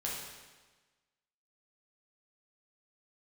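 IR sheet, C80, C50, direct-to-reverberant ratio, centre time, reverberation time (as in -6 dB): 3.0 dB, 0.5 dB, -5.0 dB, 75 ms, 1.3 s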